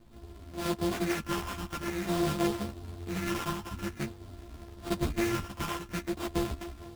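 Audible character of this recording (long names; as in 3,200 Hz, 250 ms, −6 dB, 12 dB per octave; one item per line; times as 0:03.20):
a buzz of ramps at a fixed pitch in blocks of 128 samples
phaser sweep stages 6, 0.49 Hz, lowest notch 500–3,600 Hz
aliases and images of a low sample rate 4,200 Hz, jitter 20%
a shimmering, thickened sound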